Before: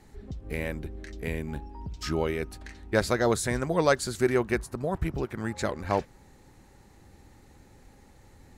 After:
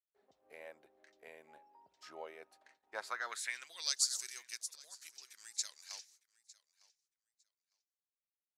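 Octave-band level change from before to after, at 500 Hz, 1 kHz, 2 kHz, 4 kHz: -26.5 dB, -17.0 dB, -12.5 dB, -1.5 dB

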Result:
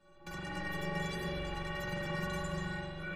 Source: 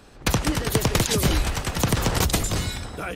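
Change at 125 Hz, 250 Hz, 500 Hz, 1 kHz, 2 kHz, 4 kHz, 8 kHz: -16.0 dB, -14.0 dB, -13.0 dB, -12.5 dB, -9.0 dB, -17.5 dB, -27.0 dB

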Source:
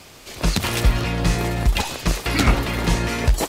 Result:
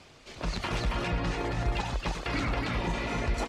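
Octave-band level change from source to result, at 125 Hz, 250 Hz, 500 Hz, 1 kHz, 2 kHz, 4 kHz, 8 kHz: -11.5 dB, -10.0 dB, -8.0 dB, -7.0 dB, -8.5 dB, -11.5 dB, -17.0 dB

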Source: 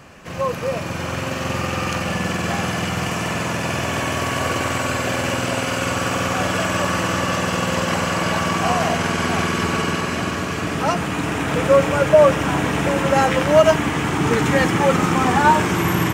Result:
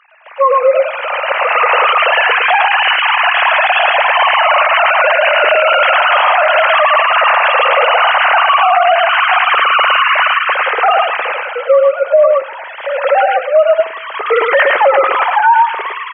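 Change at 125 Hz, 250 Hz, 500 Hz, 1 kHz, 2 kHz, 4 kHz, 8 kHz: under -40 dB, under -20 dB, +7.0 dB, +11.5 dB, +12.0 dB, +9.5 dB, under -40 dB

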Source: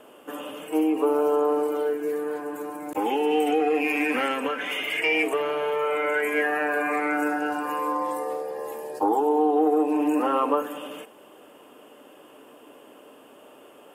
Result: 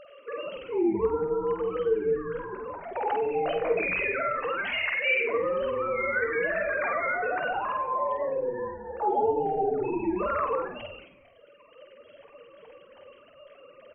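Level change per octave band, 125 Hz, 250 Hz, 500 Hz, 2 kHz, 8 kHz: no reading, -8.5 dB, -2.5 dB, -1.0 dB, under -35 dB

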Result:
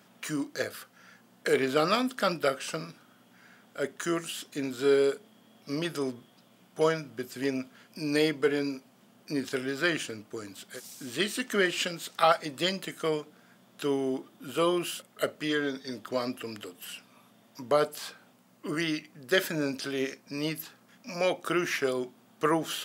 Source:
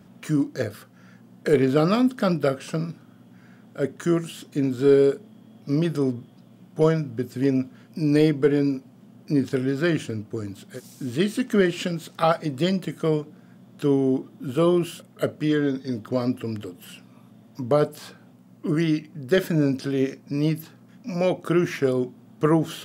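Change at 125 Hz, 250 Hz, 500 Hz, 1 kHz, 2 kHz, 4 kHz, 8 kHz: -15.0 dB, -10.0 dB, -6.0 dB, -1.0 dB, +1.5 dB, +2.5 dB, +3.0 dB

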